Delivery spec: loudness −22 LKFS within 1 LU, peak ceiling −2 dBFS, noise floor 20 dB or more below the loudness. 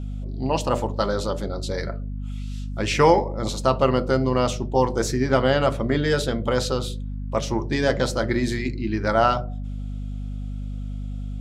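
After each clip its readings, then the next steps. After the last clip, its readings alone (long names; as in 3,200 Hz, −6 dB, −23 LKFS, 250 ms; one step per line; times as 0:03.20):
mains hum 50 Hz; hum harmonics up to 250 Hz; level of the hum −28 dBFS; integrated loudness −24.0 LKFS; sample peak −4.0 dBFS; target loudness −22.0 LKFS
→ hum removal 50 Hz, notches 5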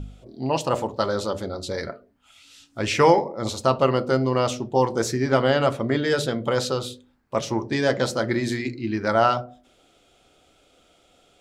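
mains hum none found; integrated loudness −23.5 LKFS; sample peak −4.0 dBFS; target loudness −22.0 LKFS
→ level +1.5 dB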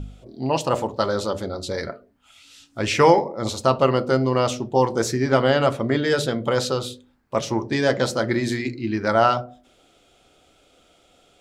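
integrated loudness −22.0 LKFS; sample peak −2.5 dBFS; background noise floor −59 dBFS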